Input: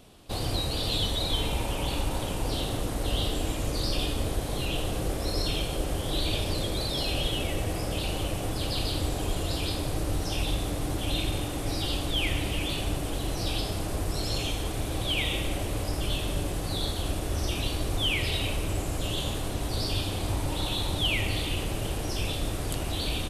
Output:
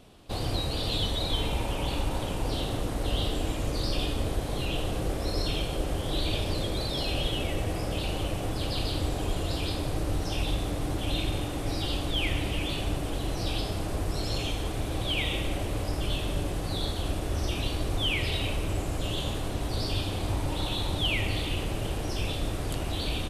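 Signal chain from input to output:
high-shelf EQ 5,700 Hz −6.5 dB

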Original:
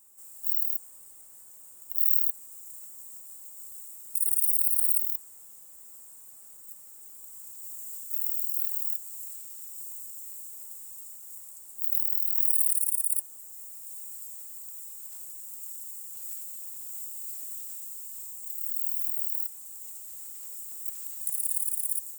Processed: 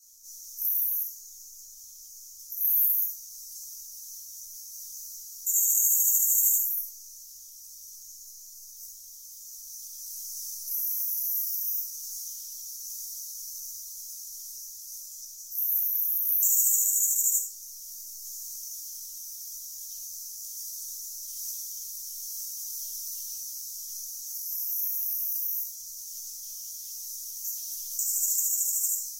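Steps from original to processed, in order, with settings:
drawn EQ curve 120 Hz 0 dB, 180 Hz −28 dB, 7,800 Hz +8 dB, 15,000 Hz 0 dB
rectangular room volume 360 cubic metres, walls furnished, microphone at 6.6 metres
speed change −24%
gate on every frequency bin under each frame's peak −30 dB strong
level −8.5 dB

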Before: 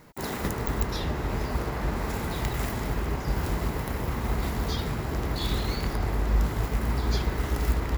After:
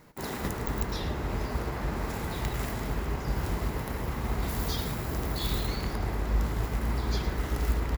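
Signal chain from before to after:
0:04.48–0:05.66: high-shelf EQ 6,300 Hz → 11,000 Hz +11 dB
single-tap delay 108 ms −11.5 dB
level −3 dB

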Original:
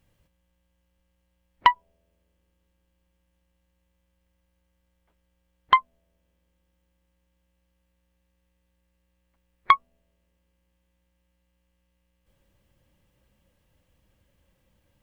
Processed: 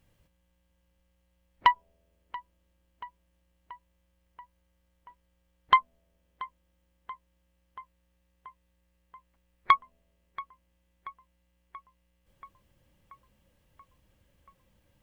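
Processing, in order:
brickwall limiter −6 dBFS, peak gain reduction 4.5 dB
on a send: feedback echo with a low-pass in the loop 682 ms, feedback 71%, low-pass 3,100 Hz, level −18 dB

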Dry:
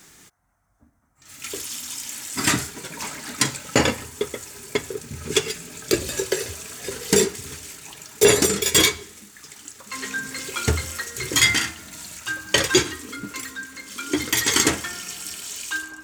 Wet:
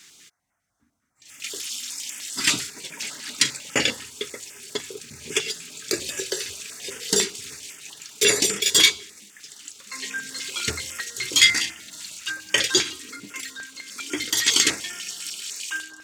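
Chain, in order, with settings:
meter weighting curve D
notch on a step sequencer 10 Hz 600–4,100 Hz
level −6.5 dB

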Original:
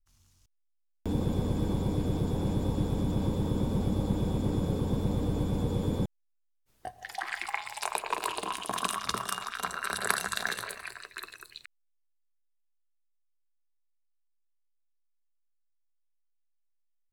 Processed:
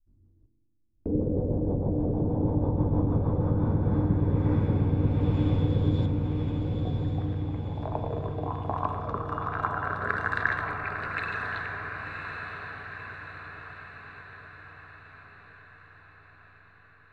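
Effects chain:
parametric band 3,100 Hz −3.5 dB 0.28 octaves
in parallel at +2 dB: downward compressor, threshold −38 dBFS, peak gain reduction 17 dB
on the sum: rotating-speaker cabinet horn 6.3 Hz, later 1.2 Hz, at 0:03.28
auto-filter low-pass saw up 0.16 Hz 300–4,000 Hz
on a send: feedback delay with all-pass diffusion 1,045 ms, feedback 57%, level −4 dB
on the sum: feedback delay network reverb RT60 1.4 s, low-frequency decay 1.25×, high-frequency decay 0.75×, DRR 7.5 dB
level −2 dB

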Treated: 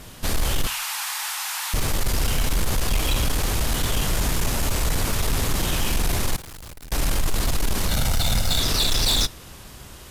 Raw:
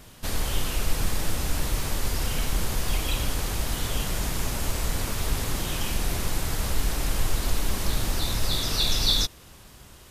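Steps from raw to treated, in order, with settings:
0:00.67–0:01.74: elliptic high-pass filter 850 Hz, stop band 60 dB
0:07.88–0:08.60: comb filter 1.4 ms, depth 81%
in parallel at −4.5 dB: sine wavefolder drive 13 dB, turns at −7 dBFS
0:06.36–0:06.92: on the sum: tube saturation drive 30 dB, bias 0.6
on a send at −20 dB: convolution reverb RT60 0.35 s, pre-delay 17 ms
on the sum: level −7.5 dB

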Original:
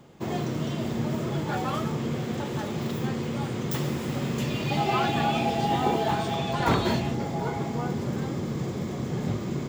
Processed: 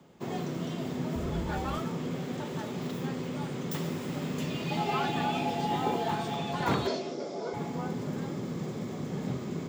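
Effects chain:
0:01.14–0:01.76: sub-octave generator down 2 octaves, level −1 dB
frequency shifter +21 Hz
0:06.87–0:07.54: loudspeaker in its box 340–7,000 Hz, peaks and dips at 380 Hz +6 dB, 600 Hz +8 dB, 870 Hz −10 dB, 1,800 Hz −8 dB, 2,800 Hz −6 dB, 5,300 Hz +8 dB
level −5 dB

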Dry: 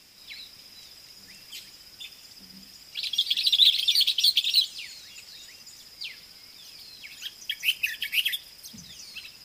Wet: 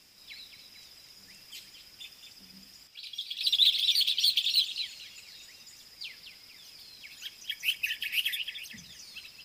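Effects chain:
0:02.87–0:03.41: tuned comb filter 110 Hz, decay 0.48 s, harmonics all, mix 70%
echo through a band-pass that steps 221 ms, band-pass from 2,900 Hz, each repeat −0.7 octaves, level −7 dB
level −4.5 dB

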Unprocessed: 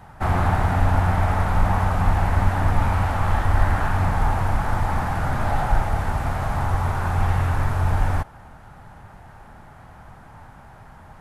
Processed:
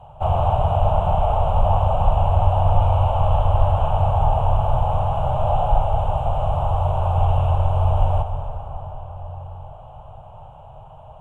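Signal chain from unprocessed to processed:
drawn EQ curve 150 Hz 0 dB, 210 Hz −17 dB, 310 Hz −16 dB, 600 Hz +8 dB, 1,100 Hz −3 dB, 1,900 Hz −29 dB, 2,900 Hz +4 dB, 4,700 Hz −25 dB, 7,500 Hz −13 dB, 13,000 Hz −22 dB
convolution reverb RT60 5.2 s, pre-delay 118 ms, DRR 6.5 dB
level +1 dB

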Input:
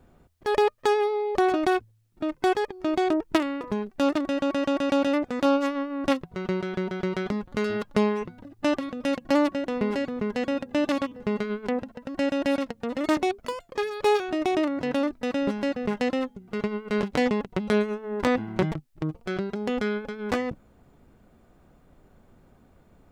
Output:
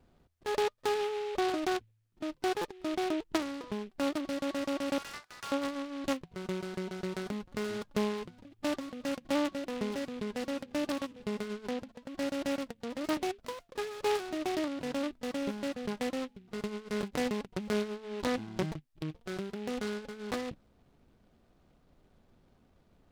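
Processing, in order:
0:04.98–0:05.52: high-pass filter 1,200 Hz 24 dB per octave
buffer that repeats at 0:02.61, samples 256, times 5
short delay modulated by noise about 2,400 Hz, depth 0.063 ms
level −8.5 dB

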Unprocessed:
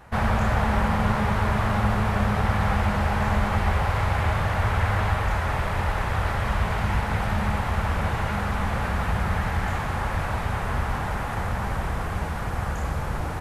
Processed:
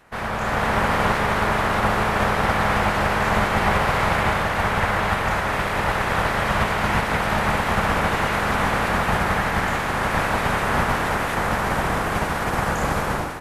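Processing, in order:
ceiling on every frequency bin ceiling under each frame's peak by 15 dB
automatic gain control
level −5.5 dB

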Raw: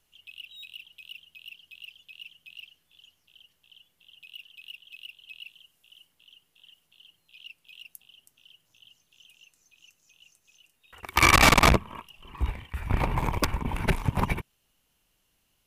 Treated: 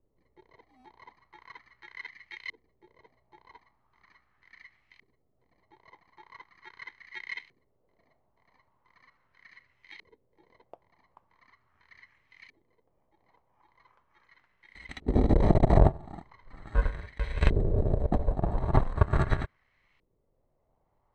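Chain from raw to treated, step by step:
samples in bit-reversed order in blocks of 64 samples
auto-filter low-pass saw up 0.54 Hz 550–3,300 Hz
wrong playback speed 45 rpm record played at 33 rpm
level +3 dB

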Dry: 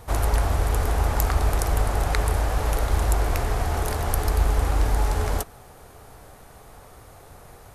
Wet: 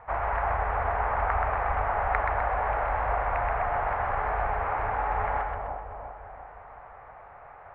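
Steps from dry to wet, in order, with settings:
Butterworth low-pass 2,200 Hz 36 dB per octave
low shelf with overshoot 490 Hz −13.5 dB, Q 1.5
echo with a time of its own for lows and highs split 940 Hz, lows 346 ms, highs 127 ms, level −3.5 dB

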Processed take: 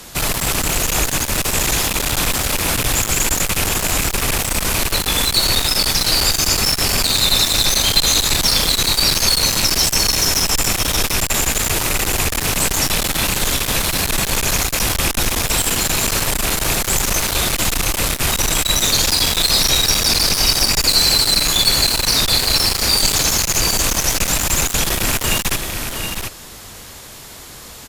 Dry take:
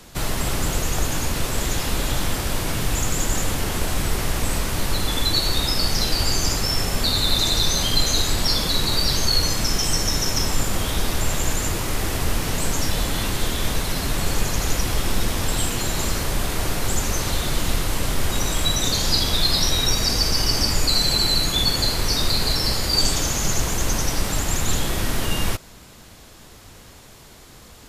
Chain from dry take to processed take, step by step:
loose part that buzzes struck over −23 dBFS, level −16 dBFS
on a send: single-tap delay 718 ms −7.5 dB
on the sum: asymmetric clip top −26 dBFS
high-shelf EQ 7,500 Hz +5.5 dB
in parallel at −2 dB: brickwall limiter −15 dBFS, peak gain reduction 8.5 dB
on the sum: low-shelf EQ 480 Hz −5 dB
level +3.5 dB

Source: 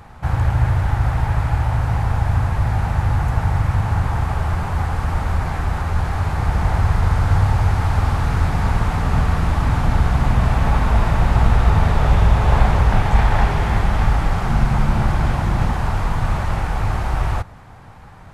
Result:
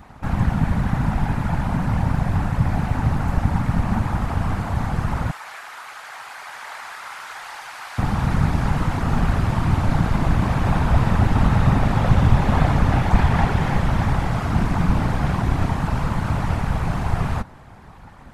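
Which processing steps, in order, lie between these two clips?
0:05.31–0:07.99: high-pass filter 1,400 Hz 12 dB per octave
random phases in short frames
level −2 dB

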